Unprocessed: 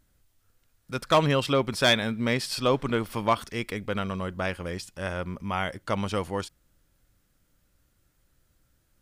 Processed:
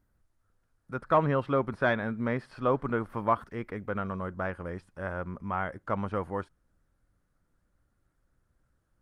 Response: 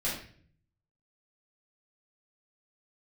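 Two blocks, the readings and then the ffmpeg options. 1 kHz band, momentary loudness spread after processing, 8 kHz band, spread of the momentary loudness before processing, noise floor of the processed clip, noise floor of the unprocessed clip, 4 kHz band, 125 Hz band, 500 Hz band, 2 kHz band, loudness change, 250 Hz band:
-1.5 dB, 11 LU, under -25 dB, 12 LU, -75 dBFS, -70 dBFS, -21.5 dB, -3.5 dB, -3.0 dB, -4.5 dB, -4.0 dB, -3.5 dB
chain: -filter_complex "[0:a]acrossover=split=3700[a][b];[b]acompressor=threshold=-50dB:ratio=4:attack=1:release=60[c];[a][c]amix=inputs=2:normalize=0,highshelf=f=2.1k:t=q:w=1.5:g=-11,volume=-3.5dB" -ar 48000 -c:a libopus -b:a 32k

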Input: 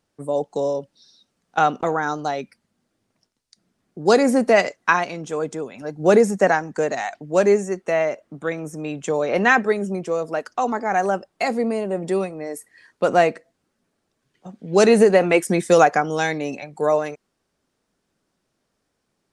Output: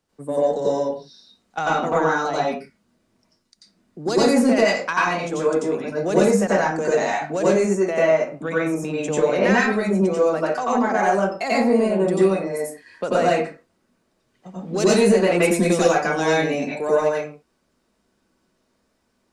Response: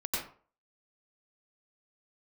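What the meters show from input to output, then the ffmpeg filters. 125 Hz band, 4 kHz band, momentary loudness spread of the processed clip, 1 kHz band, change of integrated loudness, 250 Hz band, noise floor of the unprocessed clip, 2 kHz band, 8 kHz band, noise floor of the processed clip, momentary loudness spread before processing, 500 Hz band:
+2.5 dB, +2.5 dB, 10 LU, -1.0 dB, +0.5 dB, +3.0 dB, -75 dBFS, -0.5 dB, +2.5 dB, -69 dBFS, 13 LU, +0.5 dB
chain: -filter_complex "[0:a]acrossover=split=130|3000[a][b][c];[b]acompressor=threshold=-19dB:ratio=6[d];[a][d][c]amix=inputs=3:normalize=0,asoftclip=type=tanh:threshold=-11.5dB[e];[1:a]atrim=start_sample=2205,afade=t=out:st=0.32:d=0.01,atrim=end_sample=14553[f];[e][f]afir=irnorm=-1:irlink=0"

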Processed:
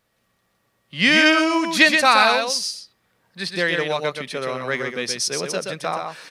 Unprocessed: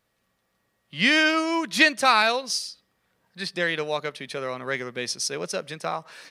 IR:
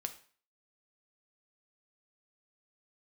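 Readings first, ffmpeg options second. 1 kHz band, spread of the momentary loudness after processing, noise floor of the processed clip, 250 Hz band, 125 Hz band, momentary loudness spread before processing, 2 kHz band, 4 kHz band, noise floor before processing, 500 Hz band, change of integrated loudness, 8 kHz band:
+4.5 dB, 14 LU, -69 dBFS, +5.0 dB, +5.0 dB, 14 LU, +4.5 dB, +5.0 dB, -74 dBFS, +5.0 dB, +4.5 dB, +4.5 dB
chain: -af "aecho=1:1:125:0.562,volume=3.5dB"

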